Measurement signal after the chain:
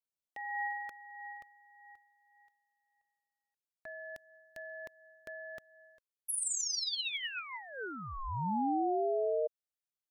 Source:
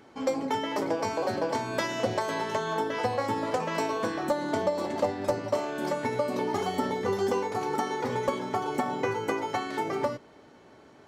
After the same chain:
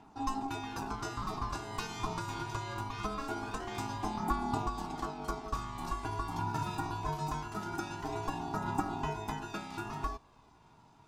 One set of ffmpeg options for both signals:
-af "equalizer=f=1.3k:t=o:w=1.4:g=-11.5,aphaser=in_gain=1:out_gain=1:delay=2.5:decay=0.43:speed=0.23:type=triangular,aeval=exprs='val(0)*sin(2*PI*540*n/s)':c=same,volume=-2.5dB"

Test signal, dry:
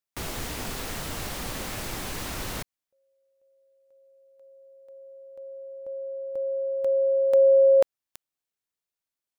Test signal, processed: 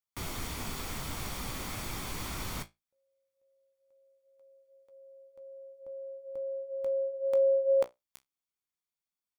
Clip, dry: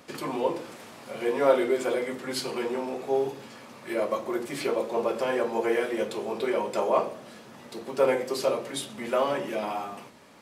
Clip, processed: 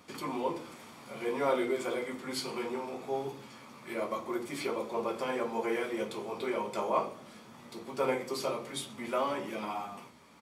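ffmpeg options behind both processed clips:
-af "flanger=delay=9.7:depth=9.8:regen=-51:speed=0.21:shape=triangular,aecho=1:1:0.9:0.32,volume=-1dB"

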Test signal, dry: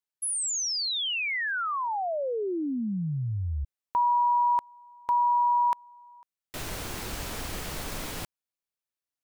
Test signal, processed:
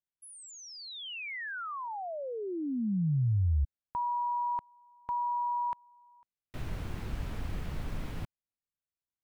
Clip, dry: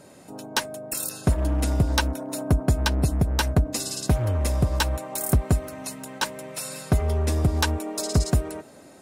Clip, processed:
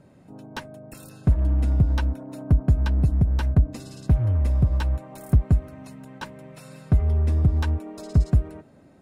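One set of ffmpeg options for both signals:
-af "bass=f=250:g=12,treble=f=4k:g=-12,volume=-8.5dB"

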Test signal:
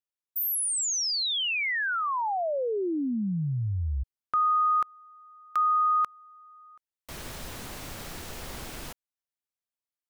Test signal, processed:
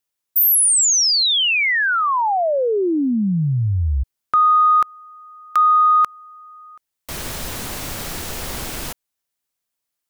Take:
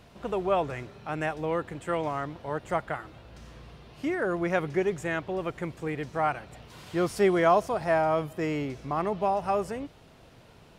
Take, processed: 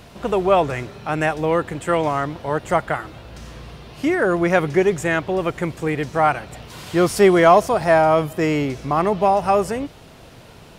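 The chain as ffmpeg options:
-af "acontrast=79,highshelf=f=5.5k:g=4.5,volume=3dB"

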